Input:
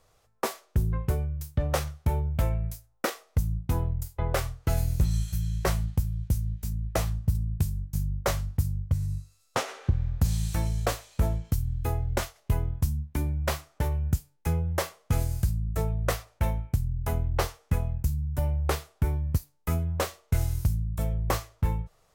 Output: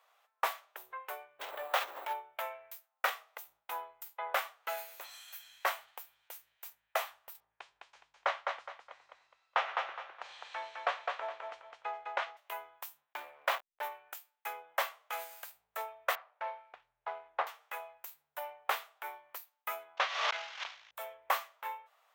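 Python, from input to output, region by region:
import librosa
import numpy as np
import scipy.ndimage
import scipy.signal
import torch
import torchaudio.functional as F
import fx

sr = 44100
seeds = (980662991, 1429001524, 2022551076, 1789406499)

y = fx.dmg_wind(x, sr, seeds[0], corner_hz=110.0, level_db=-26.0, at=(1.39, 2.13), fade=0.02)
y = fx.sample_hold(y, sr, seeds[1], rate_hz=12000.0, jitter_pct=0, at=(1.39, 2.13), fade=0.02)
y = fx.pre_swell(y, sr, db_per_s=22.0, at=(1.39, 2.13), fade=0.02)
y = fx.chain(y, sr, fx.gaussian_blur(sigma=1.9),
    fx.echo_feedback(ms=208, feedback_pct=29, wet_db=-4), at=(7.4, 12.37))
y = fx.chain(y, sr, fx.backlash(play_db=-31.5),
    fx.peak_eq(hz=570.0, db=3.0, octaves=0.24),
    fx.env_flatten(amount_pct=50), at=(13.13, 13.83))
y = fx.chain(y, sr, fx.median_filter(points=15),
    fx.air_absorb(metres=170.0), at=(16.15, 17.47))
y = fx.chain(y, sr, fx.cvsd(bps=32000),
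    fx.tilt_shelf(db=-4.0, hz=880.0),
    fx.pre_swell(db_per_s=65.0), at=(19.97, 20.91))
y = scipy.signal.sosfilt(scipy.signal.cheby2(4, 60, 210.0, 'highpass', fs=sr, output='sos'), y)
y = fx.band_shelf(y, sr, hz=7200.0, db=-11.5, octaves=1.7)
y = y * librosa.db_to_amplitude(1.0)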